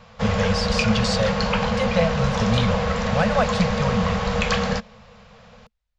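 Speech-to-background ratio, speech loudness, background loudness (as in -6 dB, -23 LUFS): -2.0 dB, -25.0 LUFS, -23.0 LUFS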